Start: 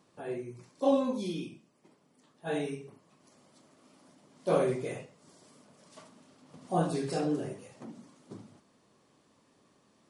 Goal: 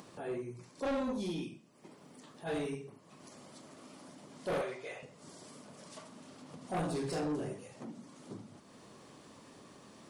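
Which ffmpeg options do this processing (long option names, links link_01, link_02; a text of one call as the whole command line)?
ffmpeg -i in.wav -filter_complex "[0:a]asettb=1/sr,asplit=3[link_01][link_02][link_03];[link_01]atrim=end=4.614[link_04];[link_02]atrim=start=4.61:end=5.03,asetpts=PTS-STARTPTS,afade=type=in:duration=0.004:curve=qsin,afade=type=out:start_time=0.416:duration=0.004:curve=qsin,acrossover=split=570 6100:gain=0.1 1 0.2[link_05][link_06][link_07];[link_05][link_06][link_07]amix=inputs=3:normalize=0[link_08];[link_03]atrim=start=5.026[link_09];[link_04][link_08]acrossfade=duration=0.004:curve1=hsin:curve2=qsin[link_10];[link_10][link_09]acrossfade=duration=0.004:curve1=qsin:curve2=hsin,acompressor=mode=upward:threshold=-44dB:ratio=2.5,asoftclip=type=tanh:threshold=-30.5dB" out.wav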